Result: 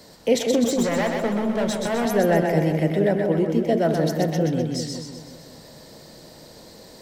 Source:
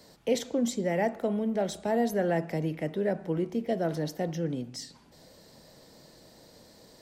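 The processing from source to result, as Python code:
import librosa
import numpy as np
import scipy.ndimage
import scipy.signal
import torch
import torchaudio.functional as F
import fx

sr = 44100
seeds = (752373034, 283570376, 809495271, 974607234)

y = fx.clip_hard(x, sr, threshold_db=-29.5, at=(0.64, 2.06))
y = fx.echo_split(y, sr, split_hz=640.0, low_ms=185, high_ms=127, feedback_pct=52, wet_db=-3.5)
y = F.gain(torch.from_numpy(y), 7.5).numpy()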